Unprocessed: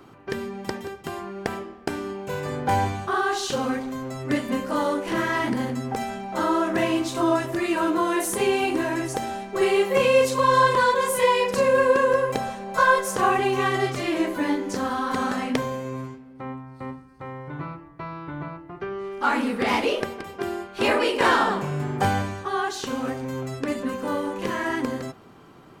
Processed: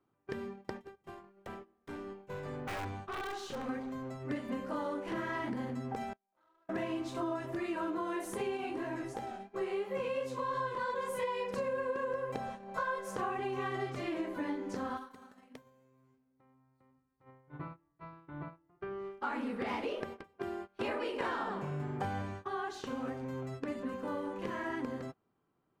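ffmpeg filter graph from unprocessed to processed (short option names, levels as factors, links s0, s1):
-filter_complex "[0:a]asettb=1/sr,asplit=3[s0][s1][s2];[s0]atrim=end=0.734[s3];[s1]atrim=start=0.73:end=3.69,asetpts=PTS-STARTPTS,afade=t=in:d=0.004:c=qsin,afade=t=out:st=2.956:d=0.004:c=qsin,aeval=exprs='(mod(6.31*val(0)+1,2)-1)/6.31':c=same,aeval=exprs='(tanh(20*val(0)+0.2)-tanh(0.2))/20':c=same[s4];[s2]atrim=start=3.686[s5];[s3][s4]acrossfade=d=0.004:c1=hsin:c2=qsin[s6];[s6][s5]acrossfade=d=0.004:c1=qsin:c2=hsin,asettb=1/sr,asplit=3[s7][s8][s9];[s7]atrim=end=6.134[s10];[s8]atrim=start=6.13:end=6.69,asetpts=PTS-STARTPTS,afade=t=in:d=0.004:c=qsin,afade=t=out:st=0.556:d=0.004:c=qsin,aderivative,adynamicsmooth=sensitivity=7.5:basefreq=590[s11];[s9]atrim=start=6.686[s12];[s10][s11]acrossfade=d=0.004:c1=hsin:c2=qsin[s13];[s13][s12]acrossfade=d=0.004:c1=qsin:c2=hsin,asettb=1/sr,asplit=3[s14][s15][s16];[s14]atrim=end=8.574[s17];[s15]atrim=start=8.57:end=10.9,asetpts=PTS-STARTPTS,afade=t=in:d=0.004:c=qsin,afade=t=out:st=2.326:d=0.004:c=qsin,flanger=delay=15:depth=5.7:speed=2.9,acompressor=mode=upward:threshold=0.0355:ratio=2.5:attack=3.2:release=140:knee=2.83:detection=peak[s18];[s16]atrim=start=10.896[s19];[s17][s18]acrossfade=d=0.004:c1=hsin:c2=qsin[s20];[s20][s19]acrossfade=d=0.004:c1=qsin:c2=hsin,asettb=1/sr,asplit=3[s21][s22][s23];[s21]atrim=end=14.974[s24];[s22]atrim=start=14.97:end=17.24,asetpts=PTS-STARTPTS,afade=t=in:d=0.004:c=qsin,afade=t=out:st=2.266:d=0.004:c=qsin,acompressor=threshold=0.02:ratio=4:attack=3.2:release=140:knee=1:detection=peak,aemphasis=mode=production:type=50fm[s25];[s23]atrim=start=17.236[s26];[s24][s25]acrossfade=d=0.004:c1=hsin:c2=qsin[s27];[s27][s26]acrossfade=d=0.004:c1=qsin:c2=hsin,agate=range=0.1:threshold=0.0224:ratio=16:detection=peak,highshelf=f=3800:g=-11,acompressor=threshold=0.0631:ratio=4,volume=0.355"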